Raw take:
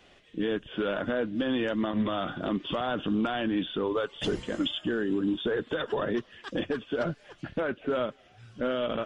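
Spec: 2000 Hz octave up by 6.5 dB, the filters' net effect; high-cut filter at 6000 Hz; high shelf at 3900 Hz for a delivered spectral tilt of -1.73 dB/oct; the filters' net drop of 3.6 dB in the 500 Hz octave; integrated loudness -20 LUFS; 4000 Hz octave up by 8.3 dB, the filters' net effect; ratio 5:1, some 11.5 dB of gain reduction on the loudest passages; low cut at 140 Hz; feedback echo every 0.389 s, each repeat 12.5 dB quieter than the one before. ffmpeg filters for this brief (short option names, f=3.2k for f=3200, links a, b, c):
-af "highpass=140,lowpass=6k,equalizer=f=500:t=o:g=-5,equalizer=f=2k:t=o:g=7,highshelf=f=3.9k:g=8,equalizer=f=4k:t=o:g=4,acompressor=threshold=-32dB:ratio=5,aecho=1:1:389|778|1167:0.237|0.0569|0.0137,volume=15.5dB"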